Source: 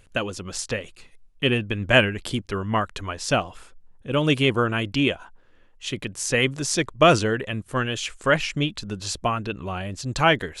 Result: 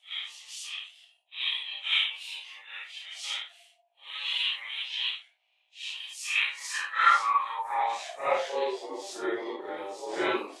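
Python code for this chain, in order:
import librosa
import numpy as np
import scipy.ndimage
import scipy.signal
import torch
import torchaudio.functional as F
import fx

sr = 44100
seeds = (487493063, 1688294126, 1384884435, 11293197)

y = fx.phase_scramble(x, sr, seeds[0], window_ms=200)
y = fx.low_shelf(y, sr, hz=180.0, db=12.0, at=(3.11, 4.11))
y = fx.add_hum(y, sr, base_hz=60, snr_db=26)
y = y * np.sin(2.0 * np.pi * 690.0 * np.arange(len(y)) / sr)
y = fx.filter_sweep_highpass(y, sr, from_hz=2900.0, to_hz=360.0, start_s=6.12, end_s=8.9, q=5.7)
y = F.gain(torch.from_numpy(y), -8.5).numpy()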